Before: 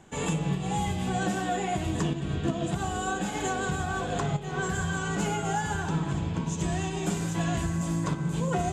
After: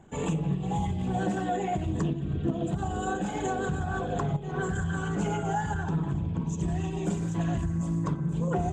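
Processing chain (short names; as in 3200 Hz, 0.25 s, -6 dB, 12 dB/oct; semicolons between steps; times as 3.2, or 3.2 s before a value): formant sharpening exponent 1.5; Doppler distortion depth 0.14 ms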